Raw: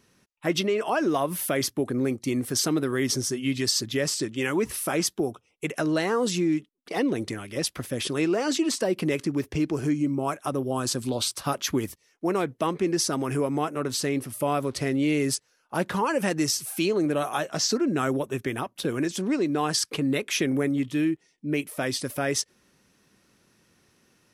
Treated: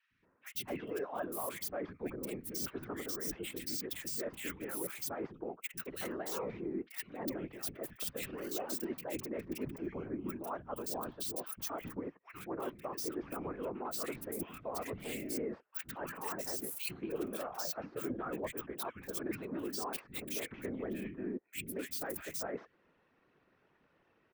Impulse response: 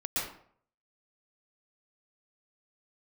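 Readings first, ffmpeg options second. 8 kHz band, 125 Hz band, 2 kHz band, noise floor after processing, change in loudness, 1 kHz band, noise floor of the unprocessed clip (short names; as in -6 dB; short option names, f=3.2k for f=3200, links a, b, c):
-14.5 dB, -18.5 dB, -14.5 dB, -73 dBFS, -13.5 dB, -13.5 dB, -68 dBFS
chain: -filter_complex "[0:a]acrossover=split=420|2300[a][b][c];[c]acrusher=bits=4:mix=0:aa=0.5[d];[a][b][d]amix=inputs=3:normalize=0,deesser=0.6,aemphasis=mode=production:type=bsi,acrossover=split=200|1700[e][f][g];[e]adelay=110[h];[f]adelay=230[i];[h][i][g]amix=inputs=3:normalize=0,areverse,acompressor=threshold=-36dB:ratio=4,areverse,afftfilt=real='hypot(re,im)*cos(2*PI*random(0))':imag='hypot(re,im)*sin(2*PI*random(1))':win_size=512:overlap=0.75,volume=4dB"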